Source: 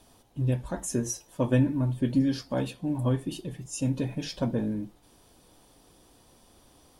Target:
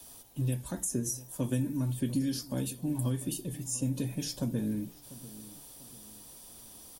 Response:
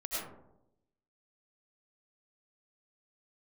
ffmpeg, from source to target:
-filter_complex "[0:a]aemphasis=mode=production:type=75fm,acrossover=split=80|390|1400|5500[s0][s1][s2][s3][s4];[s0]acompressor=threshold=0.00224:ratio=4[s5];[s1]acompressor=threshold=0.0398:ratio=4[s6];[s2]acompressor=threshold=0.00355:ratio=4[s7];[s3]acompressor=threshold=0.00251:ratio=4[s8];[s4]acompressor=threshold=0.0178:ratio=4[s9];[s5][s6][s7][s8][s9]amix=inputs=5:normalize=0,asplit=2[s10][s11];[s11]adelay=693,lowpass=f=2100:p=1,volume=0.133,asplit=2[s12][s13];[s13]adelay=693,lowpass=f=2100:p=1,volume=0.4,asplit=2[s14][s15];[s15]adelay=693,lowpass=f=2100:p=1,volume=0.4[s16];[s12][s14][s16]amix=inputs=3:normalize=0[s17];[s10][s17]amix=inputs=2:normalize=0"

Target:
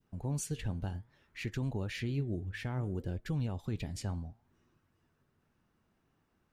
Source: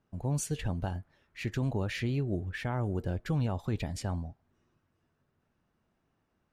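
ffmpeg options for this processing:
-filter_complex "[0:a]flanger=delay=1:depth=9:regen=86:speed=0.6:shape=sinusoidal,adynamicequalizer=threshold=0.00158:dfrequency=1100:dqfactor=0.91:tfrequency=1100:tqfactor=0.91:attack=5:release=100:ratio=0.375:range=3:mode=cutabove:tftype=bell,asplit=2[s0][s1];[s1]acompressor=threshold=0.00251:ratio=6,volume=1.06[s2];[s0][s2]amix=inputs=2:normalize=0,equalizer=f=630:t=o:w=0.6:g=-3.5"

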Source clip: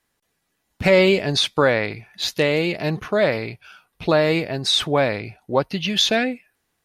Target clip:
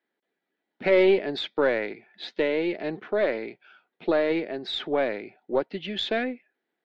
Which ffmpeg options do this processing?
-af "highpass=f=220:w=0.5412,highpass=f=220:w=1.3066,equalizer=f=370:t=q:w=4:g=5,equalizer=f=1100:t=q:w=4:g=-10,equalizer=f=2700:t=q:w=4:g=-7,lowpass=f=3300:w=0.5412,lowpass=f=3300:w=1.3066,aeval=exprs='0.668*(cos(1*acos(clip(val(0)/0.668,-1,1)))-cos(1*PI/2))+0.0335*(cos(4*acos(clip(val(0)/0.668,-1,1)))-cos(4*PI/2))':c=same,volume=0.531"

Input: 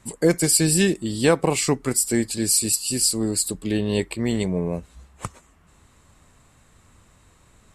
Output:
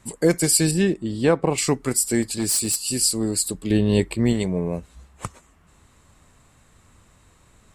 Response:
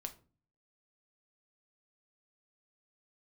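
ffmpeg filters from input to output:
-filter_complex "[0:a]asettb=1/sr,asplit=3[s0][s1][s2];[s0]atrim=end=0.714[s3];[s1]atrim=start=0.71:end=1.58,asetpts=PTS-STARTPTS,afade=t=in:d=0.004:c=qsin,afade=t=out:st=0.866:d=0.004:c=qsin,lowpass=f=1700:p=1[s4];[s2]atrim=start=1.576[s5];[s3][s4]acrossfade=d=0.004:c1=hsin:c2=qsin[s6];[s6][s5]acrossfade=d=0.004:c1=qsin:c2=hsin,asettb=1/sr,asplit=3[s7][s8][s9];[s7]atrim=end=2.224[s10];[s8]atrim=start=2.22:end=2.91,asetpts=PTS-STARTPTS,afade=t=in:d=0.004:c=qsin,afade=t=out:st=0.686:d=0.004:c=qsin,asoftclip=type=hard:threshold=0.133[s11];[s9]atrim=start=2.906[s12];[s10][s11]acrossfade=d=0.004:c1=hsin:c2=qsin[s13];[s13][s12]acrossfade=d=0.004:c1=qsin:c2=hsin,asettb=1/sr,asplit=3[s14][s15][s16];[s14]atrim=end=3.704[s17];[s15]atrim=start=3.7:end=4.33,asetpts=PTS-STARTPTS,afade=t=in:d=0.004:c=qsin,afade=t=out:st=0.626:d=0.004:c=qsin,lowshelf=f=320:g=7[s18];[s16]atrim=start=4.326[s19];[s17][s18]acrossfade=d=0.004:c1=hsin:c2=qsin[s20];[s20][s19]acrossfade=d=0.004:c1=qsin:c2=hsin"

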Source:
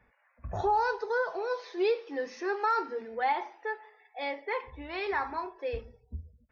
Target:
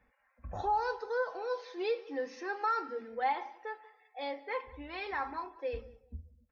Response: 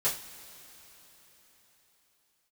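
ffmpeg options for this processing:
-filter_complex "[0:a]aecho=1:1:3.8:0.46,asplit=2[s0][s1];[s1]adelay=189,lowpass=f=2200:p=1,volume=0.1,asplit=2[s2][s3];[s3]adelay=189,lowpass=f=2200:p=1,volume=0.22[s4];[s2][s4]amix=inputs=2:normalize=0[s5];[s0][s5]amix=inputs=2:normalize=0,volume=0.562"

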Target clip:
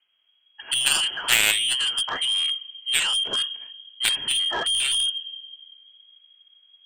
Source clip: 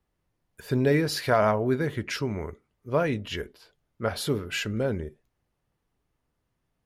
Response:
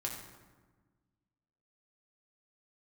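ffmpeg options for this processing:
-filter_complex "[0:a]asplit=2[s0][s1];[1:a]atrim=start_sample=2205,lowshelf=f=360:g=12[s2];[s1][s2]afir=irnorm=-1:irlink=0,volume=0.075[s3];[s0][s3]amix=inputs=2:normalize=0,asubboost=boost=9:cutoff=83,lowpass=f=2800:t=q:w=0.5098,lowpass=f=2800:t=q:w=0.6013,lowpass=f=2800:t=q:w=0.9,lowpass=f=2800:t=q:w=2.563,afreqshift=-3300,aeval=exprs='0.422*(cos(1*acos(clip(val(0)/0.422,-1,1)))-cos(1*PI/2))+0.0596*(cos(3*acos(clip(val(0)/0.422,-1,1)))-cos(3*PI/2))+0.015*(cos(4*acos(clip(val(0)/0.422,-1,1)))-cos(4*PI/2))+0.00376*(cos(6*acos(clip(val(0)/0.422,-1,1)))-cos(6*PI/2))+0.119*(cos(7*acos(clip(val(0)/0.422,-1,1)))-cos(7*PI/2))':c=same,volume=1.41"

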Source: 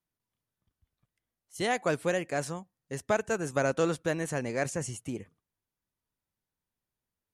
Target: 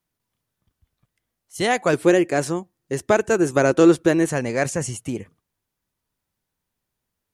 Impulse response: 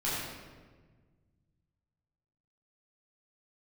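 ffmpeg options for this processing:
-filter_complex "[0:a]asettb=1/sr,asplit=3[s0][s1][s2];[s0]atrim=end=1.934[s3];[s1]atrim=start=1.93:end=4.29,asetpts=PTS-STARTPTS,afade=t=in:d=0.004:c=qsin,afade=t=out:st=2.356:d=0.004:c=qsin,equalizer=f=350:t=o:w=0.38:g=12[s4];[s2]atrim=start=4.286[s5];[s3][s4]acrossfade=d=0.004:c1=hsin:c2=qsin[s6];[s6][s5]acrossfade=d=0.004:c1=qsin:c2=hsin,volume=2.66"

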